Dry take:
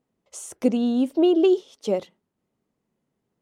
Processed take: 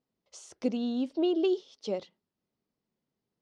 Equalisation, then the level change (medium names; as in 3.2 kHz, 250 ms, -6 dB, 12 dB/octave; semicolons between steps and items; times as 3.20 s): resonant low-pass 4.9 kHz, resonance Q 2.4; -9.0 dB